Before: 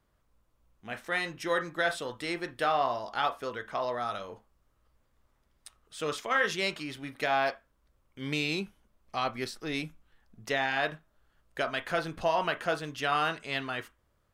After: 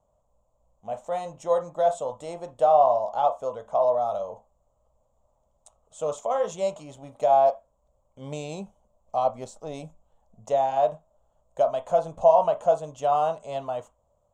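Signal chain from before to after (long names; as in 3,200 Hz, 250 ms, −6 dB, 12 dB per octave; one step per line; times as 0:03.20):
drawn EQ curve 200 Hz 0 dB, 350 Hz −9 dB, 590 Hz +14 dB, 1,000 Hz +5 dB, 1,700 Hz −22 dB, 3,300 Hz −10 dB, 4,900 Hz −16 dB, 7,100 Hz +7 dB, 11,000 Hz −16 dB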